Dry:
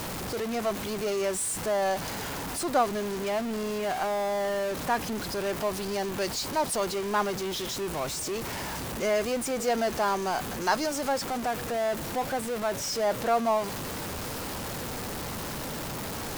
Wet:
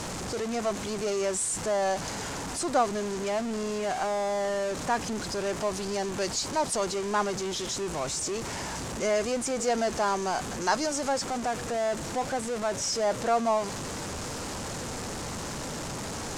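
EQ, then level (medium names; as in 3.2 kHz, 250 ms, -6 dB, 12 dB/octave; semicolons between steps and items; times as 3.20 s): resonant low-pass 7.2 kHz, resonance Q 2; peaking EQ 3.6 kHz -3 dB 1.8 oct; 0.0 dB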